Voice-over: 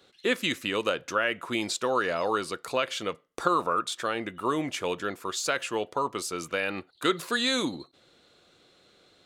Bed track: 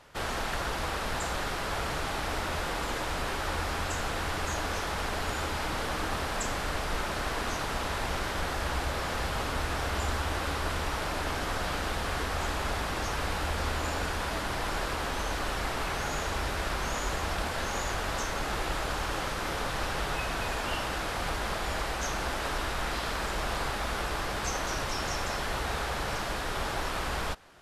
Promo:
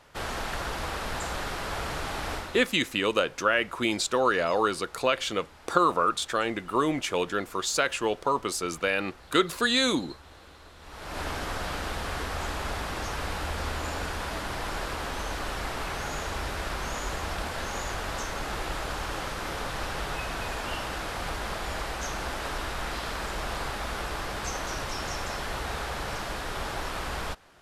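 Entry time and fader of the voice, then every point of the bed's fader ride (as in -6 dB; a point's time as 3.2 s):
2.30 s, +2.5 dB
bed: 2.34 s -0.5 dB
2.77 s -20 dB
10.76 s -20 dB
11.2 s -1 dB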